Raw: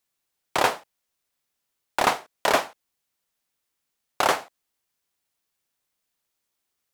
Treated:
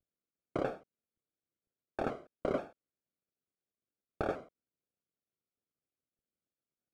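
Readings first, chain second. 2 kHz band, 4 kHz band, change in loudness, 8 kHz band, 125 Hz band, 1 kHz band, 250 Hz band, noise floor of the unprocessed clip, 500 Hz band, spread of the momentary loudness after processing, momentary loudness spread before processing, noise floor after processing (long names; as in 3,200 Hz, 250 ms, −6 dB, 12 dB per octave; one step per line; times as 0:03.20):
−20.0 dB, −28.0 dB, −14.0 dB, below −30 dB, −2.0 dB, −18.5 dB, −3.5 dB, −80 dBFS, −9.0 dB, 10 LU, 9 LU, below −85 dBFS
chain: variable-slope delta modulation 64 kbit/s
downward compressor 4 to 1, threshold −23 dBFS, peak gain reduction 7.5 dB
moving average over 47 samples
pitch modulation by a square or saw wave square 3.1 Hz, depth 100 cents
level +2.5 dB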